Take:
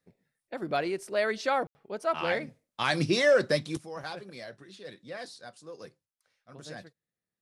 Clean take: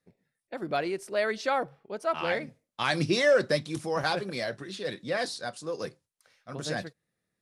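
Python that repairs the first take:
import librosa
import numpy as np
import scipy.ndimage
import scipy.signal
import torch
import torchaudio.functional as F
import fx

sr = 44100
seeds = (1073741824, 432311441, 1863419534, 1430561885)

y = fx.fix_ambience(x, sr, seeds[0], print_start_s=0.0, print_end_s=0.5, start_s=1.67, end_s=1.75)
y = fx.gain(y, sr, db=fx.steps((0.0, 0.0), (3.77, 10.5)))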